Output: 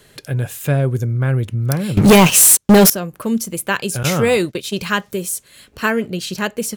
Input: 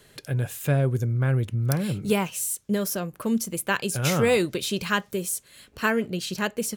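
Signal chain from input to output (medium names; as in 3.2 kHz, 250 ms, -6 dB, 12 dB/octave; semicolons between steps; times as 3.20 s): 1.97–2.90 s: waveshaping leveller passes 5; 4.03–4.81 s: gate -28 dBFS, range -20 dB; trim +5.5 dB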